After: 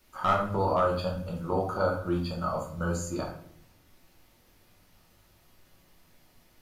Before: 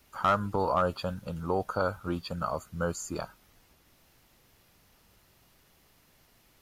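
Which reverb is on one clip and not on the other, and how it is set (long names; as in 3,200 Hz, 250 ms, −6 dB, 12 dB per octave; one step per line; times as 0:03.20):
rectangular room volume 98 cubic metres, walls mixed, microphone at 1 metre
level −3.5 dB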